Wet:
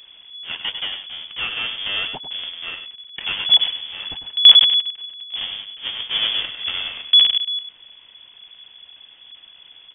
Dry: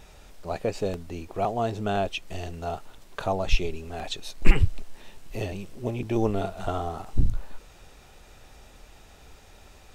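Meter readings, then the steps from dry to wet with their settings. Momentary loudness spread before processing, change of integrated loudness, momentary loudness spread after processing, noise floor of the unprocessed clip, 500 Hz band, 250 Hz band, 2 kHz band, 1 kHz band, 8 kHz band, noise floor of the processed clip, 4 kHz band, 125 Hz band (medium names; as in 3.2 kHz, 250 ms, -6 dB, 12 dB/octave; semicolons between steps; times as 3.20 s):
11 LU, +13.5 dB, 20 LU, -52 dBFS, under -15 dB, under -15 dB, +8.5 dB, -7.0 dB, no reading, -49 dBFS, +27.5 dB, under -20 dB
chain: square wave that keeps the level; echo from a far wall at 17 m, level -9 dB; frequency inversion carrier 3.4 kHz; trim -3.5 dB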